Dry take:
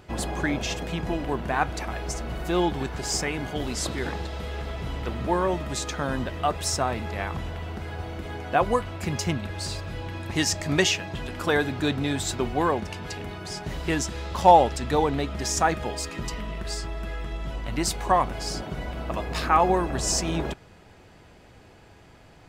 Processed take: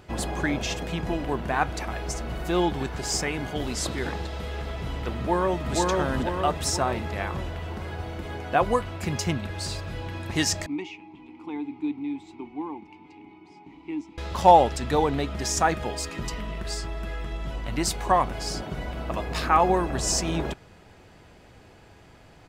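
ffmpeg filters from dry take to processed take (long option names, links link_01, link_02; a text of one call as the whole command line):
ffmpeg -i in.wav -filter_complex "[0:a]asplit=2[link_01][link_02];[link_02]afade=type=in:start_time=5.16:duration=0.01,afade=type=out:start_time=5.74:duration=0.01,aecho=0:1:480|960|1440|1920|2400|2880|3360|3840:0.891251|0.490188|0.269603|0.148282|0.081555|0.0448553|0.0246704|0.0135687[link_03];[link_01][link_03]amix=inputs=2:normalize=0,asettb=1/sr,asplit=3[link_04][link_05][link_06];[link_04]atrim=end=10.664[link_07];[link_05]atrim=start=10.66:end=14.18,asetpts=PTS-STARTPTS,afade=type=in:duration=0.004:curve=qsin,afade=type=out:start_time=3.516:duration=0.004:curve=qsin,asplit=3[link_08][link_09][link_10];[link_08]bandpass=frequency=300:width_type=q:width=8,volume=0dB[link_11];[link_09]bandpass=frequency=870:width_type=q:width=8,volume=-6dB[link_12];[link_10]bandpass=frequency=2240:width_type=q:width=8,volume=-9dB[link_13];[link_11][link_12][link_13]amix=inputs=3:normalize=0[link_14];[link_06]atrim=start=14.176[link_15];[link_07][link_14]acrossfade=duration=0.004:curve1=hsin:curve2=qsin[link_16];[link_16][link_15]acrossfade=duration=0.004:curve1=qsin:curve2=hsin" out.wav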